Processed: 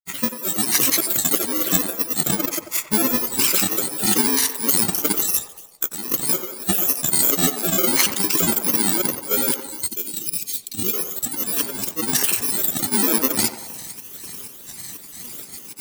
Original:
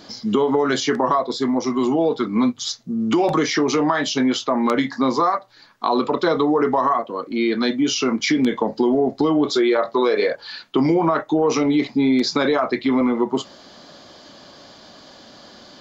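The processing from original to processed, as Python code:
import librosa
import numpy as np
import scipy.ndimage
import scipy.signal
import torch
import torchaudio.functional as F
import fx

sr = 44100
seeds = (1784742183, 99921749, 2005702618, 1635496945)

p1 = fx.bit_reversed(x, sr, seeds[0], block=64)
p2 = fx.volume_shaper(p1, sr, bpm=116, per_beat=1, depth_db=-7, release_ms=202.0, shape='slow start')
p3 = fx.high_shelf(p2, sr, hz=4800.0, db=9.0)
p4 = fx.over_compress(p3, sr, threshold_db=-18.0, ratio=-0.5)
p5 = fx.granulator(p4, sr, seeds[1], grain_ms=100.0, per_s=20.0, spray_ms=100.0, spread_st=7)
p6 = p5 + fx.echo_banded(p5, sr, ms=91, feedback_pct=63, hz=730.0, wet_db=-7, dry=0)
p7 = fx.spec_box(p6, sr, start_s=9.88, length_s=1.05, low_hz=450.0, high_hz=2300.0, gain_db=-11)
y = F.gain(torch.from_numpy(p7), 1.5).numpy()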